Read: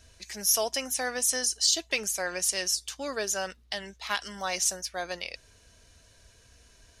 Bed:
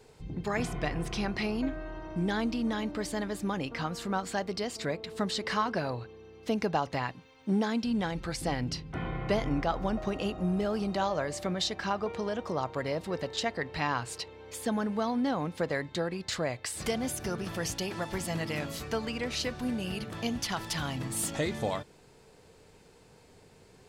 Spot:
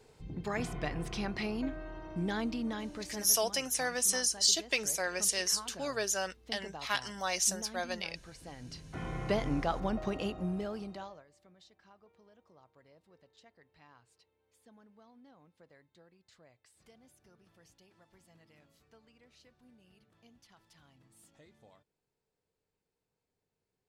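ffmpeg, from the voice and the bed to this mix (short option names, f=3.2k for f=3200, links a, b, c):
-filter_complex "[0:a]adelay=2800,volume=-2.5dB[a];[1:a]volume=10.5dB,afade=t=out:st=2.53:d=0.89:silence=0.223872,afade=t=in:st=8.6:d=0.59:silence=0.188365,afade=t=out:st=10.16:d=1.08:silence=0.0421697[b];[a][b]amix=inputs=2:normalize=0"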